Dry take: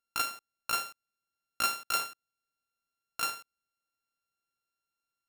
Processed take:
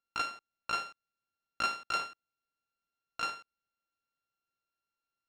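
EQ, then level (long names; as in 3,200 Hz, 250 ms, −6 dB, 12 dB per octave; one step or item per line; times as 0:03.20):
high-frequency loss of the air 130 metres
high-shelf EQ 11,000 Hz +2.5 dB
0.0 dB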